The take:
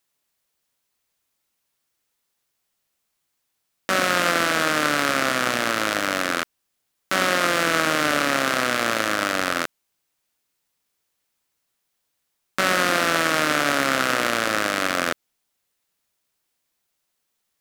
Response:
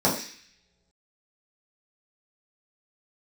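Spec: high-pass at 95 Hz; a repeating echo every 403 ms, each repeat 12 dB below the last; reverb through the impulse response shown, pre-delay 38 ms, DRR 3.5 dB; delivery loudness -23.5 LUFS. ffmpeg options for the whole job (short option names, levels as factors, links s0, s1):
-filter_complex "[0:a]highpass=95,aecho=1:1:403|806|1209:0.251|0.0628|0.0157,asplit=2[s0][s1];[1:a]atrim=start_sample=2205,adelay=38[s2];[s1][s2]afir=irnorm=-1:irlink=0,volume=0.106[s3];[s0][s3]amix=inputs=2:normalize=0,volume=0.596"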